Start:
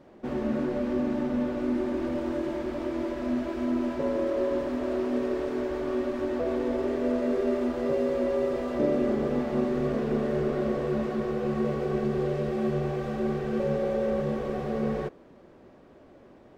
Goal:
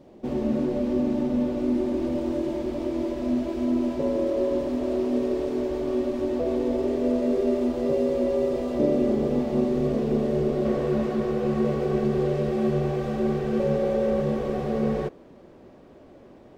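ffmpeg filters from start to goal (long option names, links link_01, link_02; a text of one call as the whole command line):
ffmpeg -i in.wav -af "asetnsamples=nb_out_samples=441:pad=0,asendcmd='10.65 equalizer g -4',equalizer=frequency=1500:width=1.1:gain=-11,volume=4dB" out.wav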